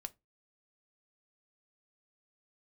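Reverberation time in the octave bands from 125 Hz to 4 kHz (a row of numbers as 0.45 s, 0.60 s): 0.30 s, 0.25 s, 0.20 s, 0.20 s, 0.20 s, 0.15 s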